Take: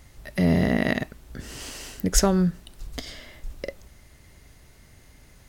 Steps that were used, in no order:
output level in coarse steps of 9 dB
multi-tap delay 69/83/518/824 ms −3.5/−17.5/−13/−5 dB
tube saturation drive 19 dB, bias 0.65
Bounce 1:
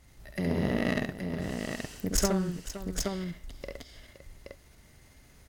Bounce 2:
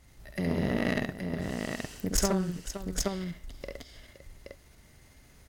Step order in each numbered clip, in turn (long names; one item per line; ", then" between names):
output level in coarse steps, then tube saturation, then multi-tap delay
output level in coarse steps, then multi-tap delay, then tube saturation